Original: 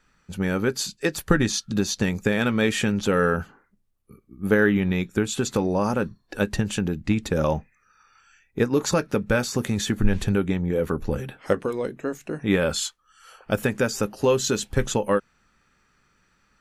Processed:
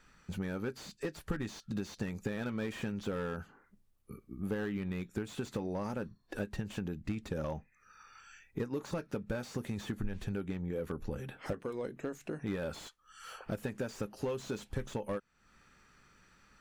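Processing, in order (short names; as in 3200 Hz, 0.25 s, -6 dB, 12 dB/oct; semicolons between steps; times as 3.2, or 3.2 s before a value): compressor 3:1, threshold -40 dBFS, peak gain reduction 20 dB; slew limiter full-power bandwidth 16 Hz; gain +1 dB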